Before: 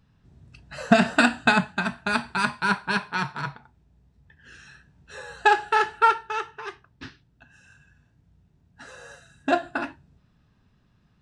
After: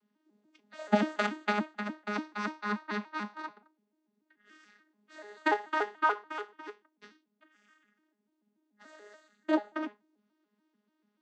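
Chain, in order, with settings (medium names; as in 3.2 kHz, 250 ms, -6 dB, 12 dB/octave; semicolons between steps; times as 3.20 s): vocoder on a broken chord bare fifth, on G#3, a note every 145 ms; high-pass 260 Hz 24 dB/octave; treble shelf 4.6 kHz +7 dB; trim -5.5 dB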